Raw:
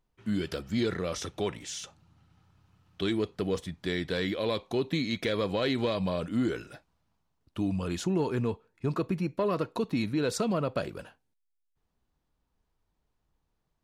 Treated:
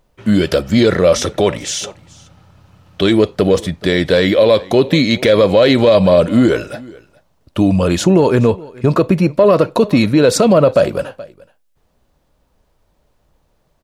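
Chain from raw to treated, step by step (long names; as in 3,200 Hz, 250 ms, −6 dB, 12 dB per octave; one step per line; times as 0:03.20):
parametric band 570 Hz +10 dB 0.4 octaves
on a send: single-tap delay 426 ms −23.5 dB
on the sum: boost into a limiter +18 dB
level −1 dB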